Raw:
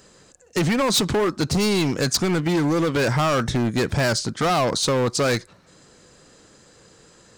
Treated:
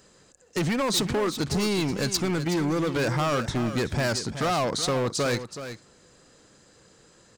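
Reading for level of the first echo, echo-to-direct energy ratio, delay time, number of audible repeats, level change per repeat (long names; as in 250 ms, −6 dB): −11.0 dB, −11.0 dB, 374 ms, 1, repeats not evenly spaced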